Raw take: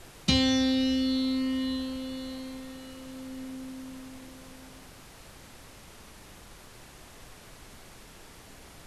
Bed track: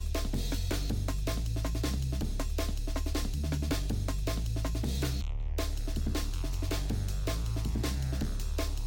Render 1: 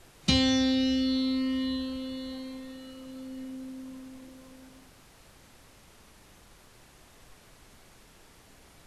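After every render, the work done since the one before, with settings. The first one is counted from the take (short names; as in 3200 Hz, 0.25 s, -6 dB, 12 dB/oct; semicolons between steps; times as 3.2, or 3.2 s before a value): noise print and reduce 6 dB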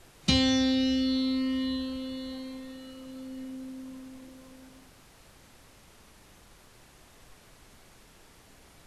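nothing audible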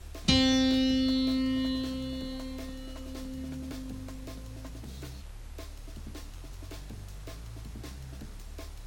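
add bed track -11 dB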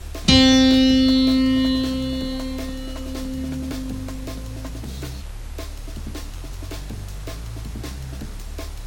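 gain +11 dB; limiter -2 dBFS, peak gain reduction 2.5 dB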